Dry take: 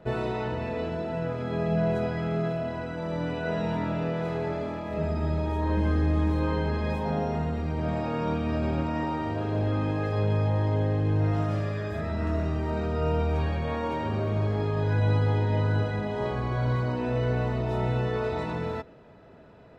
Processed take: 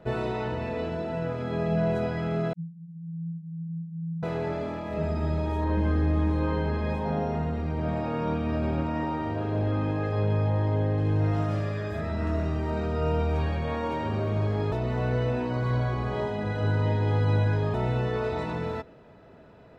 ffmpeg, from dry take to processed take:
-filter_complex "[0:a]asettb=1/sr,asplit=3[a][b][c];[a]atrim=end=2.534[d];[b]atrim=start=2.53:end=4.23,asetpts=PTS-STARTPTS,afade=t=in:d=0.004:c=qsin,afade=t=out:st=1.696:d=0.004:c=qsin,asuperpass=centerf=170:order=20:qfactor=4.1[e];[c]atrim=start=4.226[f];[d][e]acrossfade=d=0.004:c1=hsin:c2=qsin[g];[g][f]acrossfade=d=0.004:c1=qsin:c2=hsin,asettb=1/sr,asplit=3[h][i][j];[h]atrim=end=5.644[k];[i]atrim=start=5.64:end=10.98,asetpts=PTS-STARTPTS,afade=t=in:d=0.004:c=qsin,afade=t=out:st=5.336:d=0.004:c=qsin,highshelf=f=4.4k:g=-7.5[l];[j]atrim=start=10.976[m];[k][l]acrossfade=d=0.004:c1=hsin:c2=qsin[n];[n][m]acrossfade=d=0.004:c1=qsin:c2=hsin,asplit=3[o][p][q];[o]atrim=end=14.722[r];[p]atrim=start=14.718:end=17.742,asetpts=PTS-STARTPTS,areverse[s];[q]atrim=start=17.738[t];[r][s]acrossfade=d=0.004:c1=hsin:c2=hsin[u];[u][t]acrossfade=d=0.004:c1=hsin:c2=hsin"

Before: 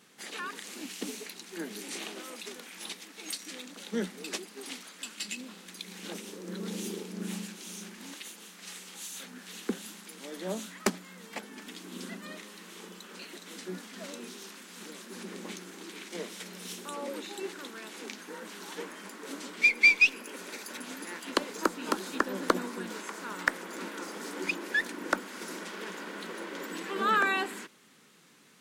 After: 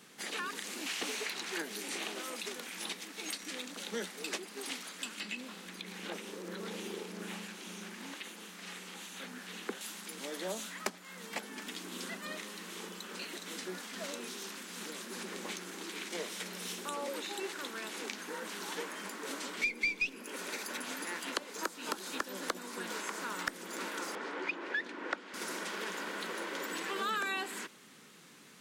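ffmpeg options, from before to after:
-filter_complex "[0:a]asettb=1/sr,asplit=3[a][b][c];[a]atrim=end=0.864[d];[b]atrim=start=0.86:end=1.62,asetpts=PTS-STARTPTS,afade=t=in:d=0.004:c=qsin,afade=t=out:st=0.756:d=0.004:c=qsin,asplit=2[e][f];[f]highpass=f=720:p=1,volume=15dB,asoftclip=type=tanh:threshold=-21.5dB[g];[e][g]amix=inputs=2:normalize=0,lowpass=f=4.7k:p=1,volume=-6dB[h];[c]atrim=start=1.616[i];[d][h]acrossfade=d=0.004:c1=hsin:c2=qsin[j];[j][i]acrossfade=d=0.004:c1=qsin:c2=hsin,asettb=1/sr,asplit=3[k][l][m];[k]atrim=end=5.204[n];[l]atrim=start=5.2:end=9.81,asetpts=PTS-STARTPTS,afade=t=in:d=0.004:c=qsin,afade=t=out:st=4.606:d=0.004:c=qsin,acrossover=split=3200[o][p];[p]acompressor=threshold=-54dB:ratio=4:attack=1:release=60[q];[o][q]amix=inputs=2:normalize=0[r];[m]atrim=start=9.806[s];[n][r]acrossfade=d=0.004:c1=hsin:c2=qsin[t];[t][s]acrossfade=d=0.004:c1=qsin:c2=hsin,asettb=1/sr,asplit=3[u][v][w];[u]atrim=end=24.154[x];[v]atrim=start=24.15:end=25.34,asetpts=PTS-STARTPTS,afade=t=in:d=0.004:c=qsin,afade=t=out:st=1.186:d=0.004:c=qsin,highpass=270,lowpass=2.7k[y];[w]atrim=start=25.336[z];[x][y]acrossfade=d=0.004:c1=hsin:c2=qsin[aa];[aa][z]acrossfade=d=0.004:c1=qsin:c2=hsin,acrossover=split=450|3000[ab][ac][ad];[ab]acompressor=threshold=-51dB:ratio=4[ae];[ac]acompressor=threshold=-40dB:ratio=4[af];[ad]acompressor=threshold=-44dB:ratio=4[ag];[ae][af][ag]amix=inputs=3:normalize=0,volume=3dB"

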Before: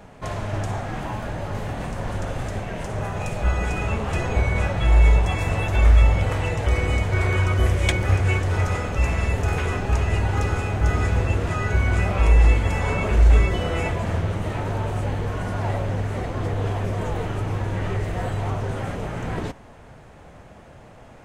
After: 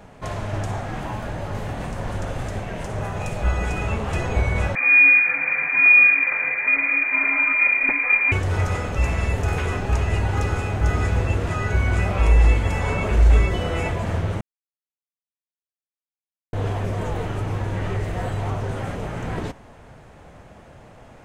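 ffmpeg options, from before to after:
-filter_complex "[0:a]asettb=1/sr,asplit=3[a][b][c];[a]atrim=end=4.754[d];[b]atrim=start=4.75:end=8.32,asetpts=PTS-STARTPTS,afade=t=in:d=0.004:c=qsin,afade=t=out:st=3.566:d=0.004:c=qsin,lowpass=f=2.1k:t=q:w=0.5098,lowpass=f=2.1k:t=q:w=0.6013,lowpass=f=2.1k:t=q:w=0.9,lowpass=f=2.1k:t=q:w=2.563,afreqshift=-2500[e];[c]atrim=start=8.316[f];[d][e]acrossfade=d=0.004:c1=hsin:c2=qsin[g];[g][f]acrossfade=d=0.004:c1=qsin:c2=hsin,asplit=3[h][i][j];[h]atrim=end=14.41,asetpts=PTS-STARTPTS,afade=t=out:st=14.406:d=0.004:c=hsin[k];[i]atrim=start=14.41:end=16.53,asetpts=PTS-STARTPTS,volume=0[l];[j]atrim=start=16.53,asetpts=PTS-STARTPTS,afade=t=in:d=0.004:c=hsin[m];[k][l][m]concat=n=3:v=0:a=1"

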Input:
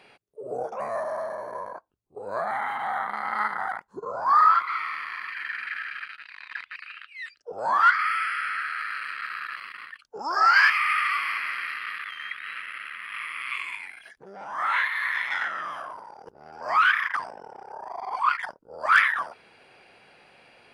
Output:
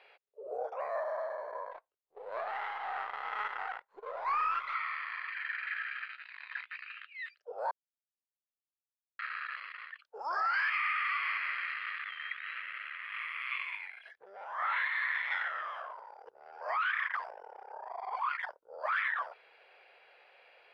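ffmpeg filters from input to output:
-filter_complex "[0:a]asettb=1/sr,asplit=3[a][b][c];[a]atrim=end=1.714[d];[b]atrim=start=1.71:end=4.74,asetpts=PTS-STARTPTS,afade=t=in:d=0.004:c=qsin,afade=t=out:st=3.026:d=0.004:c=qsin,aeval=exprs='if(lt(val(0),0),0.447*val(0),val(0))':c=same[e];[c]atrim=start=4.736[f];[d][e]acrossfade=d=0.004:c1=hsin:c2=qsin[g];[g][f]acrossfade=d=0.004:c1=qsin:c2=hsin,asettb=1/sr,asplit=3[h][i][j];[h]atrim=end=5.614[k];[i]atrim=start=5.61:end=7.04,asetpts=PTS-STARTPTS,afade=t=in:d=0.004:c=qsin,afade=t=out:st=1.426:d=0.004:c=qsin,asplit=2[l][m];[m]adelay=16,volume=-9dB[n];[l][n]amix=inputs=2:normalize=0,atrim=end_sample=63063[o];[j]atrim=start=7.036[p];[k][o]acrossfade=d=0.004:c1=hsin:c2=qsin[q];[q][p]acrossfade=d=0.004:c1=qsin:c2=hsin,asplit=3[r][s][t];[r]atrim=end=7.71,asetpts=PTS-STARTPTS,afade=t=out:st=7.706:d=0.004:c=hsin[u];[s]atrim=start=7.71:end=9.19,asetpts=PTS-STARTPTS,volume=0[v];[t]atrim=start=9.19,asetpts=PTS-STARTPTS,afade=t=in:d=0.004:c=hsin[w];[u][v][w]concat=n=3:v=0:a=1,acrossover=split=400 3300:gain=0.1 1 0.141[x][y][z];[x][y][z]amix=inputs=3:normalize=0,alimiter=limit=-19dB:level=0:latency=1:release=54,equalizer=f=250:t=o:w=1:g=-10,equalizer=f=500:t=o:w=1:g=7,equalizer=f=2k:t=o:w=1:g=3,equalizer=f=4k:t=o:w=1:g=7,volume=-8dB"

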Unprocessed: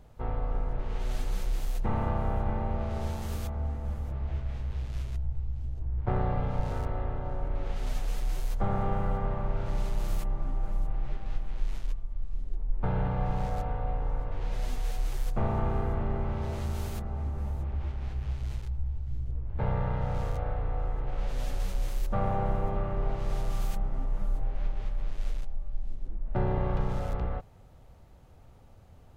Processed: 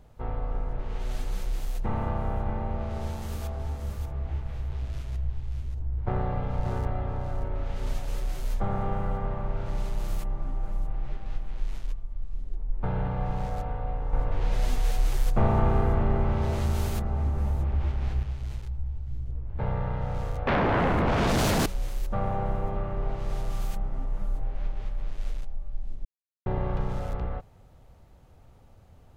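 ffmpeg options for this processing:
-filter_complex "[0:a]asettb=1/sr,asplit=3[a][b][c];[a]atrim=end=2.834[d];[b]atrim=start=2.83:end=8.6,asetpts=PTS-STARTPTS,afade=t=in:d=0.004:c=qsin,afade=t=out:st=5.766:d=0.004:c=qsin,aecho=1:1:582:0.473,atrim=end_sample=254457[e];[c]atrim=start=8.596[f];[d][e]acrossfade=d=0.004:c1=hsin:c2=qsin[g];[g][f]acrossfade=d=0.004:c1=qsin:c2=hsin,asettb=1/sr,asplit=3[h][i][j];[h]atrim=end=20.474[k];[i]atrim=start=20.47:end=21.66,asetpts=PTS-STARTPTS,afade=t=in:d=0.004:c=qsin,afade=t=out:st=1.186:d=0.004:c=qsin,aeval=exprs='0.1*sin(PI/2*7.08*val(0)/0.1)':c=same[l];[j]atrim=start=21.656[m];[k][l]acrossfade=d=0.004:c1=hsin:c2=qsin[n];[n][m]acrossfade=d=0.004:c1=qsin:c2=hsin,asplit=5[o][p][q][r][s];[o]atrim=end=14.132[t];[p]atrim=start=14.128:end=18.232,asetpts=PTS-STARTPTS,volume=6dB[u];[q]atrim=start=18.228:end=26.05,asetpts=PTS-STARTPTS,afade=t=out:st=7.818:d=0.004:c=hsin[v];[r]atrim=start=26.05:end=26.46,asetpts=PTS-STARTPTS,volume=0[w];[s]atrim=start=26.46,asetpts=PTS-STARTPTS,afade=t=in:d=0.004:c=hsin[x];[t][u]acrossfade=d=0.004:c1=hsin:c2=hsin[y];[v][w][x]concat=n=3:v=0:a=1[z];[y][z]acrossfade=d=0.004:c1=hsin:c2=hsin"

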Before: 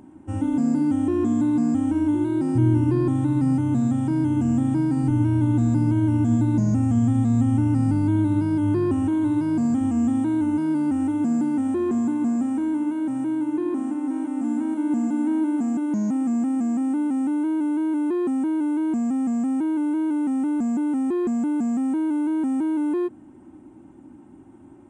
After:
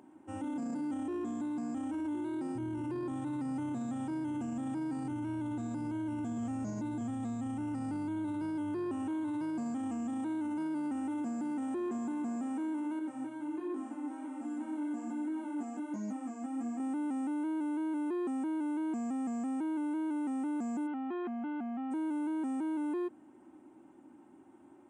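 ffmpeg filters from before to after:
-filter_complex "[0:a]asettb=1/sr,asplit=3[a][b][c];[a]atrim=end=12.994[d];[b]atrim=start=12.99:end=16.8,asetpts=PTS-STARTPTS,afade=t=in:d=0.004:c=qsin,afade=t=out:st=3.806:d=0.004:c=qsin,flanger=delay=19.5:depth=4.7:speed=1.3[e];[c]atrim=start=16.796[f];[d][e]acrossfade=d=0.004:c1=hsin:c2=qsin[g];[g][f]acrossfade=d=0.004:c1=qsin:c2=hsin,asplit=3[h][i][j];[h]afade=t=out:st=20.86:d=0.02[k];[i]highpass=220,equalizer=f=240:t=q:w=4:g=7,equalizer=f=440:t=q:w=4:g=-9,equalizer=f=750:t=q:w=4:g=9,equalizer=f=1.4k:t=q:w=4:g=8,equalizer=f=2.1k:t=q:w=4:g=4,equalizer=f=3k:t=q:w=4:g=7,lowpass=f=3.7k:w=0.5412,lowpass=f=3.7k:w=1.3066,afade=t=in:st=20.86:d=0.02,afade=t=out:st=21.9:d=0.02[l];[j]afade=t=in:st=21.9:d=0.02[m];[k][l][m]amix=inputs=3:normalize=0,asplit=3[n][o][p];[n]atrim=end=6.382[q];[o]atrim=start=6.378:end=7.012,asetpts=PTS-STARTPTS,areverse[r];[p]atrim=start=7.008[s];[q][r]acrossfade=d=0.004:c1=hsin:c2=hsin[t];[t][s]acrossfade=d=0.004:c1=hsin:c2=hsin,highpass=f=140:p=1,bass=f=250:g=-11,treble=f=4k:g=-2,alimiter=level_in=2dB:limit=-24dB:level=0:latency=1:release=13,volume=-2dB,volume=-5.5dB"

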